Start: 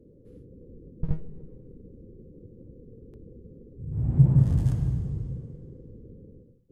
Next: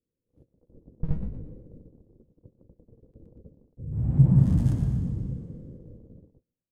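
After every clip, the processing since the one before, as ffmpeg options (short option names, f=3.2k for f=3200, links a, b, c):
-filter_complex "[0:a]bandreject=f=400:w=12,asplit=2[a][b];[b]asplit=4[c][d][e][f];[c]adelay=118,afreqshift=50,volume=-9dB[g];[d]adelay=236,afreqshift=100,volume=-17.6dB[h];[e]adelay=354,afreqshift=150,volume=-26.3dB[i];[f]adelay=472,afreqshift=200,volume=-34.9dB[j];[g][h][i][j]amix=inputs=4:normalize=0[k];[a][k]amix=inputs=2:normalize=0,agate=range=-34dB:threshold=-44dB:ratio=16:detection=peak"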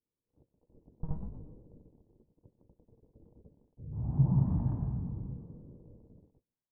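-af "lowpass=f=940:t=q:w=3.5,bandreject=f=520:w=12,volume=-8.5dB"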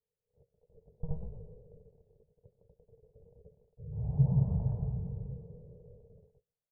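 -af "firequalizer=gain_entry='entry(160,0);entry(300,-24);entry(430,8);entry(1100,-12)':delay=0.05:min_phase=1"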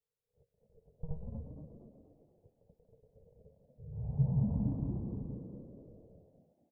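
-filter_complex "[0:a]asplit=6[a][b][c][d][e][f];[b]adelay=236,afreqshift=72,volume=-6dB[g];[c]adelay=472,afreqshift=144,volume=-14.4dB[h];[d]adelay=708,afreqshift=216,volume=-22.8dB[i];[e]adelay=944,afreqshift=288,volume=-31.2dB[j];[f]adelay=1180,afreqshift=360,volume=-39.6dB[k];[a][g][h][i][j][k]amix=inputs=6:normalize=0,volume=-4dB"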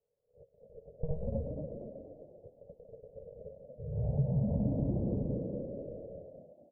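-af "acompressor=threshold=-35dB:ratio=4,lowpass=f=580:t=q:w=4.9,volume=6.5dB"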